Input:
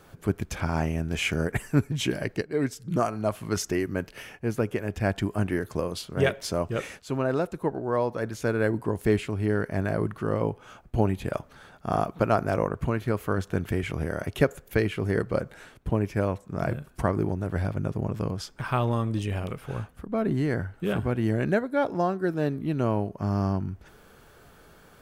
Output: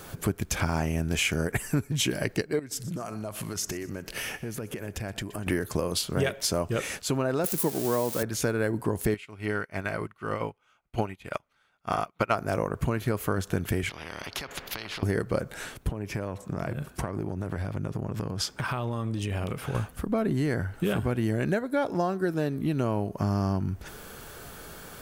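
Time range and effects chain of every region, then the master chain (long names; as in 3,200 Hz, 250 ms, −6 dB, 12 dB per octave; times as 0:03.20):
0:02.59–0:05.47: downward compressor 12 to 1, threshold −39 dBFS + repeating echo 123 ms, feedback 44%, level −18 dB
0:07.44–0:08.23: spike at every zero crossing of −25 dBFS + high-pass filter 160 Hz + low-shelf EQ 320 Hz +10 dB
0:09.14–0:12.35: parametric band 2,000 Hz +13.5 dB 2.3 octaves + notch filter 1,700 Hz, Q 7.5 + expander for the loud parts 2.5 to 1, over −37 dBFS
0:13.89–0:15.03: high-frequency loss of the air 320 metres + downward compressor 4 to 1, threshold −39 dBFS + every bin compressed towards the loudest bin 4 to 1
0:15.90–0:19.75: high-pass filter 57 Hz + high-shelf EQ 6,000 Hz −7 dB + downward compressor 10 to 1, threshold −34 dBFS
whole clip: high-shelf EQ 4,400 Hz +9 dB; downward compressor 4 to 1, threshold −33 dBFS; level +8 dB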